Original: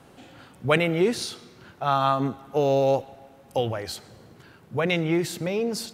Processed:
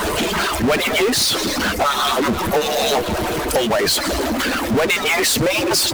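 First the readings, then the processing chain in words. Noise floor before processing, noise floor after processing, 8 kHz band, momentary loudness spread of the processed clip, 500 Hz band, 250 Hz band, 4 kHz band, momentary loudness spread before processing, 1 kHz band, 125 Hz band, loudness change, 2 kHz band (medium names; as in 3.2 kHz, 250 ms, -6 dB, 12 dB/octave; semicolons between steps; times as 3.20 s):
-53 dBFS, -23 dBFS, +18.5 dB, 4 LU, +5.5 dB, +6.5 dB, +16.0 dB, 12 LU, +7.5 dB, +2.0 dB, +7.5 dB, +12.5 dB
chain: harmonic-percussive separation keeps percussive; power-law waveshaper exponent 0.35; compression 4:1, threshold -22 dBFS, peak gain reduction 9 dB; trim +5.5 dB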